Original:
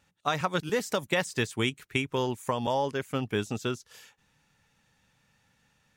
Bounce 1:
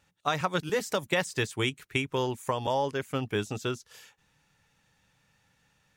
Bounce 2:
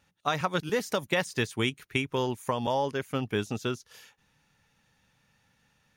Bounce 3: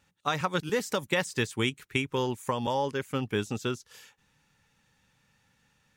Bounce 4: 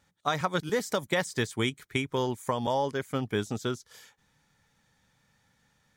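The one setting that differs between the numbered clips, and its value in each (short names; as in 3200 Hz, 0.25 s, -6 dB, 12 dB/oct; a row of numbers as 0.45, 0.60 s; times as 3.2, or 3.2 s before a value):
notch, frequency: 230, 7700, 670, 2700 Hz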